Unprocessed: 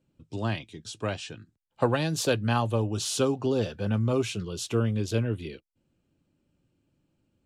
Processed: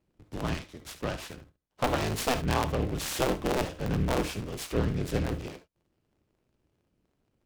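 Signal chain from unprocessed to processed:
sub-harmonics by changed cycles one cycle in 3, inverted
reverb whose tail is shaped and stops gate 90 ms rising, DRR 9.5 dB
amplitude modulation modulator 240 Hz, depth 45%
short delay modulated by noise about 1,900 Hz, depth 0.042 ms

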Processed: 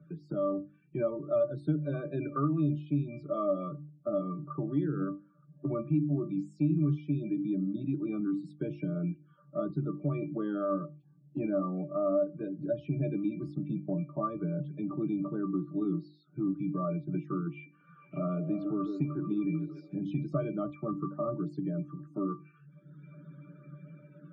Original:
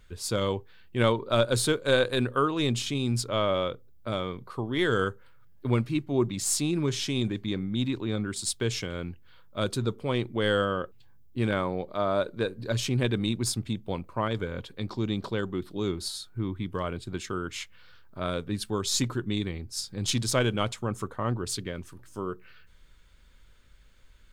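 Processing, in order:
high-shelf EQ 3,400 Hz −9 dB
soft clipping −16 dBFS, distortion −22 dB
elliptic high-pass filter 150 Hz, stop band 50 dB
spectral peaks only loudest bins 32
resonances in every octave D, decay 0.18 s
0:17.51–0:19.95: echo through a band-pass that steps 149 ms, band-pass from 410 Hz, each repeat 0.7 octaves, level −4.5 dB
automatic gain control gain up to 9.5 dB
bass and treble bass +8 dB, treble −2 dB
mains-hum notches 50/100/150/200/250/300/350 Hz
multiband upward and downward compressor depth 70%

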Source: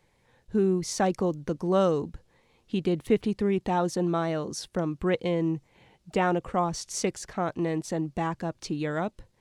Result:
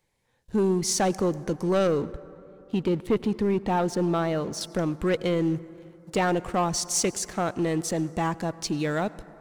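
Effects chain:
high-shelf EQ 5,000 Hz +8.5 dB, from 0:01.87 −4 dB, from 0:04.61 +9.5 dB
leveller curve on the samples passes 2
convolution reverb RT60 3.1 s, pre-delay 78 ms, DRR 18 dB
level −4.5 dB

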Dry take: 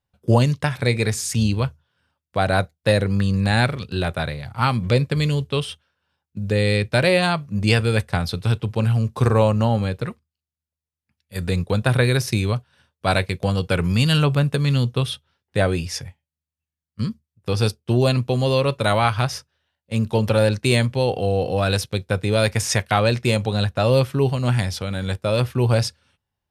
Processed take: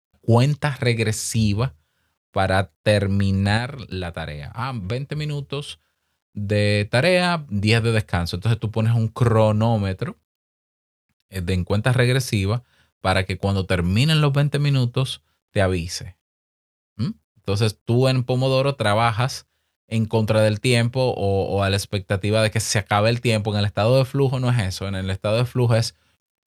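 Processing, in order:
0:03.57–0:05.69: downward compressor 2.5 to 1, threshold −26 dBFS, peak gain reduction 9.5 dB
bit-depth reduction 12 bits, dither none

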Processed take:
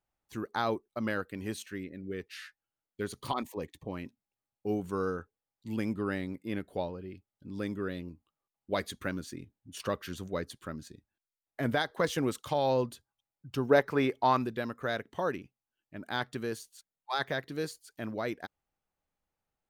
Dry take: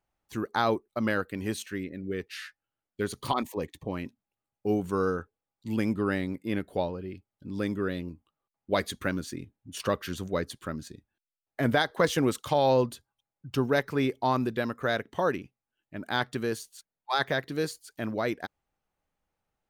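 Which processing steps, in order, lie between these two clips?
0:13.69–0:14.42: parametric band 520 Hz → 2,100 Hz +8.5 dB 2.9 octaves
level −5 dB

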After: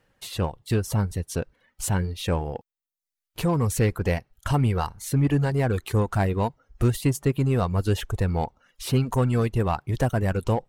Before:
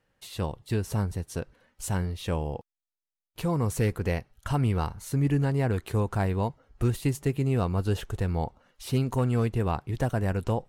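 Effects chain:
reverb reduction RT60 0.71 s
in parallel at −5 dB: hard clipping −32 dBFS, distortion −5 dB
on the sum: level +3 dB

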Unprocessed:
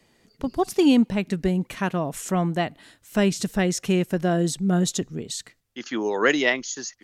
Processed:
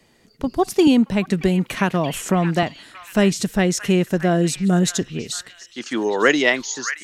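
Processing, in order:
echo through a band-pass that steps 625 ms, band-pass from 1,700 Hz, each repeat 0.7 octaves, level −7.5 dB
0:00.87–0:02.63: multiband upward and downward compressor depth 70%
level +4 dB

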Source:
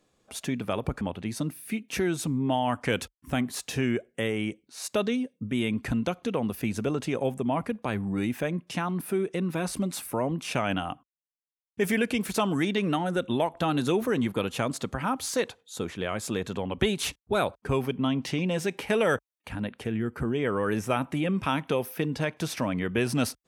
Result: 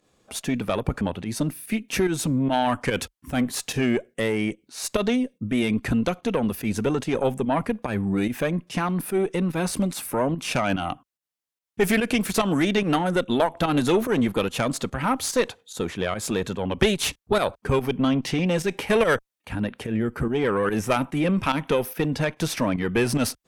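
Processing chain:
fake sidechain pumping 145 BPM, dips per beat 1, −10 dB, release 101 ms
harmonic generator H 4 −16 dB, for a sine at −10 dBFS
level +5.5 dB

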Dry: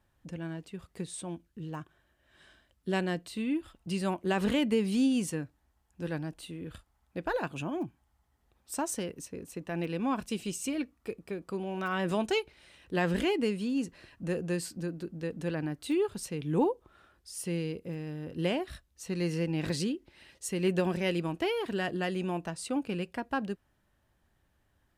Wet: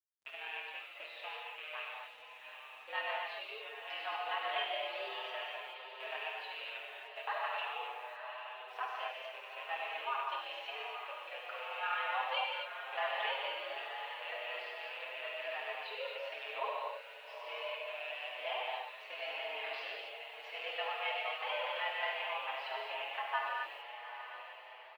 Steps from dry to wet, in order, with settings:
loose part that buzzes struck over −42 dBFS, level −33 dBFS
in parallel at +3 dB: downward compressor 12 to 1, threshold −38 dBFS, peak gain reduction 16 dB
on the sum: noise gate −52 dBFS, range −7 dB
amplitude modulation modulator 41 Hz, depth 45%
reverb whose tail is shaped and stops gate 290 ms flat, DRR −2 dB
single-sideband voice off tune +130 Hz 580–3,400 Hz
bit reduction 11 bits
on a send: feedback delay with all-pass diffusion 855 ms, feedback 53%, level −8.5 dB
on the sum: barber-pole flanger 7.1 ms +0.31 Hz
level −2 dB

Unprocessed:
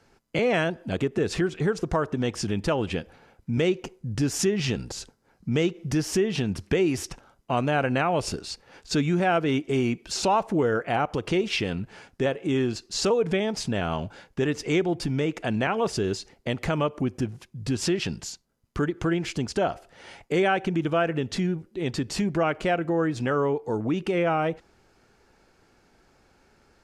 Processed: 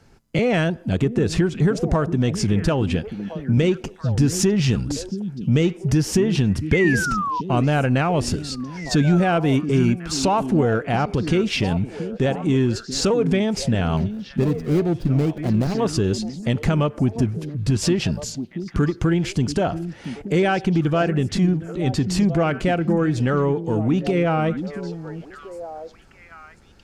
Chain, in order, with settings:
0:13.97–0:15.80: running median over 41 samples
bass and treble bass +9 dB, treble +2 dB
in parallel at −8 dB: soft clipping −21.5 dBFS, distortion −10 dB
0:06.72–0:07.41: on the sum: sound drawn into the spectrogram fall 940–2,200 Hz −24 dBFS
echo through a band-pass that steps 682 ms, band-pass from 230 Hz, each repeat 1.4 octaves, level −7 dB

